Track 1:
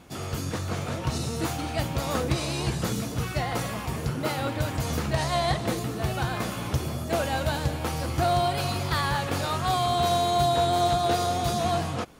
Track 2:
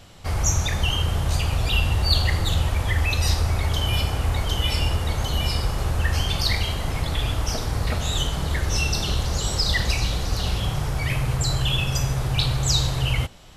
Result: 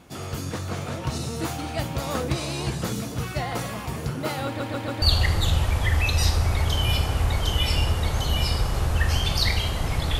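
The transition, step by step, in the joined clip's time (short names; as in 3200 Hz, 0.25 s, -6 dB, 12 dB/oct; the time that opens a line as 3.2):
track 1
4.46 stutter in place 0.14 s, 4 plays
5.02 switch to track 2 from 2.06 s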